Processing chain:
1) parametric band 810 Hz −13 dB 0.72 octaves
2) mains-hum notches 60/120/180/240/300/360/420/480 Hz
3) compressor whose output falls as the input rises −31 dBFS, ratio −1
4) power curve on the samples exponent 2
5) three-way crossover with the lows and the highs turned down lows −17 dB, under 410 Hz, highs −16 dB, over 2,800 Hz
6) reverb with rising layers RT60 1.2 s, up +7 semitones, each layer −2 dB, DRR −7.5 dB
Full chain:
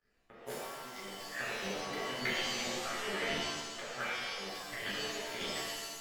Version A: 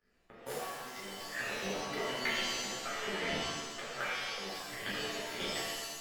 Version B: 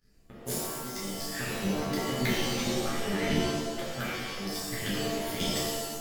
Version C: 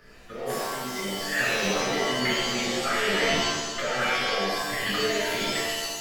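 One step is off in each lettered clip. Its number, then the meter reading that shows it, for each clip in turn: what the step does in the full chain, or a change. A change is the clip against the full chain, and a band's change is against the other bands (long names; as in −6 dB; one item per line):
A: 2, change in momentary loudness spread −1 LU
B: 5, 125 Hz band +10.5 dB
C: 4, change in crest factor −5.5 dB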